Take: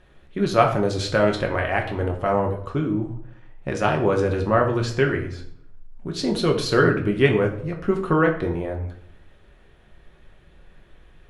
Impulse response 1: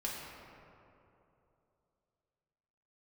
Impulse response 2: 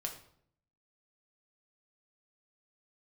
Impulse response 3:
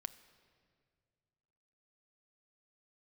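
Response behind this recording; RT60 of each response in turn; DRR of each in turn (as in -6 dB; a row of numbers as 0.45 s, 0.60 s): 2; 2.9 s, 0.65 s, 2.1 s; -5.0 dB, 1.5 dB, 11.5 dB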